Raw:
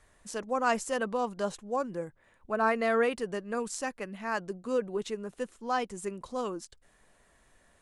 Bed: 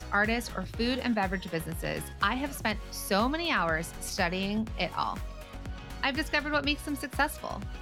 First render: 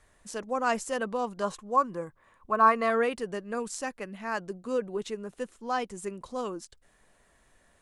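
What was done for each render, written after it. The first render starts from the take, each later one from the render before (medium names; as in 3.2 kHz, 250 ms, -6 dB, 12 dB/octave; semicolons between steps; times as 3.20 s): 1.42–2.90 s: peaking EQ 1.1 kHz +13.5 dB 0.31 oct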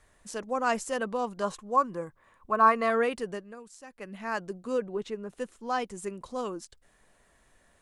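3.29–4.15 s: dip -14 dB, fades 0.27 s; 4.83–5.30 s: low-pass 2.9 kHz 6 dB/octave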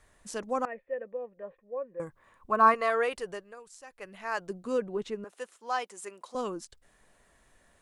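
0.65–2.00 s: cascade formant filter e; 2.74–4.49 s: peaking EQ 230 Hz -13.5 dB; 5.24–6.35 s: high-pass 580 Hz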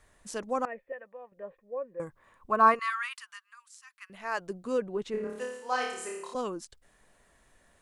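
0.92–1.32 s: resonant low shelf 630 Hz -9.5 dB, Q 1.5; 2.79–4.10 s: elliptic high-pass 1.1 kHz, stop band 50 dB; 5.11–6.34 s: flutter echo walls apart 4.8 m, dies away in 0.75 s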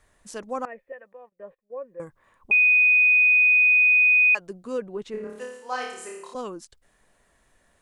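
1.13–1.76 s: gate -57 dBFS, range -18 dB; 2.51–4.35 s: bleep 2.49 kHz -14 dBFS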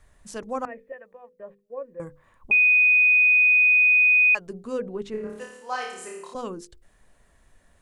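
bass shelf 170 Hz +10 dB; hum notches 50/100/150/200/250/300/350/400/450/500 Hz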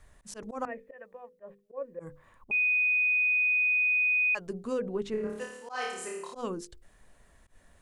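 peak limiter -22.5 dBFS, peak gain reduction 9 dB; slow attack 106 ms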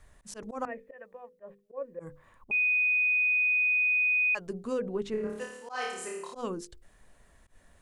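no audible change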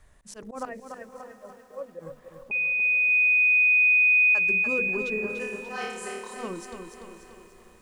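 echo that smears into a reverb 586 ms, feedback 45%, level -14.5 dB; bit-crushed delay 292 ms, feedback 55%, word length 10-bit, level -6.5 dB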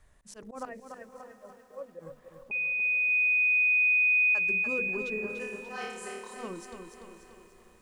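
trim -4.5 dB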